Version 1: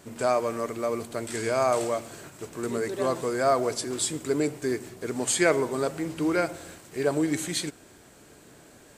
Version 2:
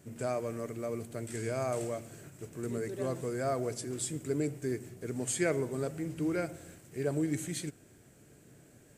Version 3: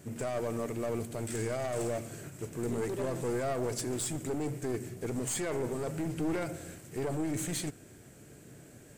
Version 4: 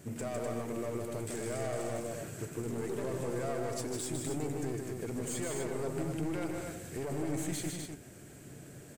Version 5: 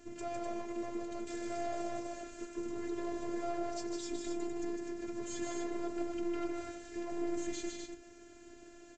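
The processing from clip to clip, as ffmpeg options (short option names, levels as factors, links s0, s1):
-af "equalizer=f=125:t=o:w=1:g=8,equalizer=f=1000:t=o:w=1:g=-9,equalizer=f=4000:t=o:w=1:g=-7,volume=0.473"
-af "alimiter=level_in=1.68:limit=0.0631:level=0:latency=1:release=17,volume=0.596,aeval=exprs='clip(val(0),-1,0.0112)':c=same,volume=1.88"
-filter_complex "[0:a]alimiter=level_in=1.78:limit=0.0631:level=0:latency=1:release=240,volume=0.562,asplit=2[s0][s1];[s1]aecho=0:1:154.5|250.7:0.631|0.562[s2];[s0][s2]amix=inputs=2:normalize=0"
-af "afftfilt=real='hypot(re,im)*cos(PI*b)':imag='0':win_size=512:overlap=0.75,volume=1.12" -ar 16000 -c:a libvorbis -b:a 64k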